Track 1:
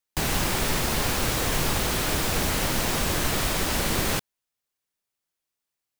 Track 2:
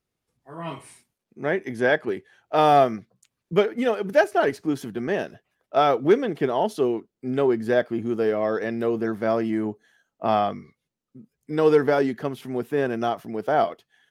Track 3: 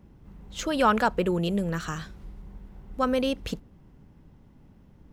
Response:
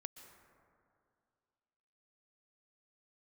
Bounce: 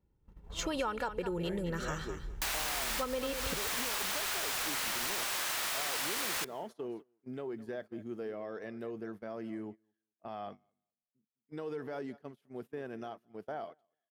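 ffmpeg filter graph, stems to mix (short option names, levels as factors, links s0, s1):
-filter_complex "[0:a]highpass=960,highshelf=f=5200:g=-2.5,aeval=exprs='(mod(11.2*val(0)+1,2)-1)/11.2':c=same,adelay=2250,volume=0.841,asplit=2[s0][s1];[s1]volume=0.2[s2];[1:a]alimiter=limit=0.158:level=0:latency=1:release=93,volume=0.168,asplit=2[s3][s4];[s4]volume=0.141[s5];[2:a]aecho=1:1:2.2:0.42,volume=0.708,asplit=3[s6][s7][s8];[s7]volume=0.266[s9];[s8]apad=whole_len=363445[s10];[s0][s10]sidechaincompress=threshold=0.0355:ratio=8:attack=16:release=840[s11];[3:a]atrim=start_sample=2205[s12];[s2][s12]afir=irnorm=-1:irlink=0[s13];[s5][s9]amix=inputs=2:normalize=0,aecho=0:1:208|416|624:1|0.16|0.0256[s14];[s11][s3][s6][s13][s14]amix=inputs=5:normalize=0,agate=range=0.112:threshold=0.00562:ratio=16:detection=peak,acompressor=threshold=0.0282:ratio=12"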